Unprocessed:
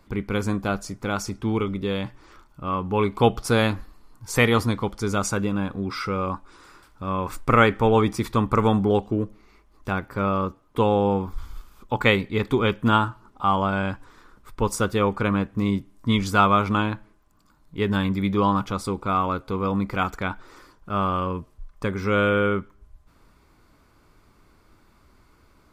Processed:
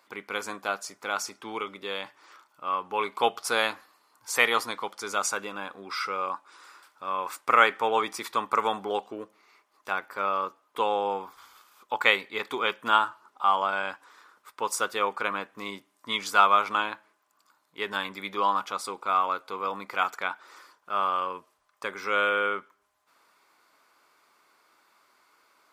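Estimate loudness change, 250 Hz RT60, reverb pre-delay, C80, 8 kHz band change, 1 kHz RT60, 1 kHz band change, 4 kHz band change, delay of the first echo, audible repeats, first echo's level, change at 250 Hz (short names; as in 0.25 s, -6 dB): -4.0 dB, none, none, none, 0.0 dB, none, -1.0 dB, 0.0 dB, none, none, none, -18.5 dB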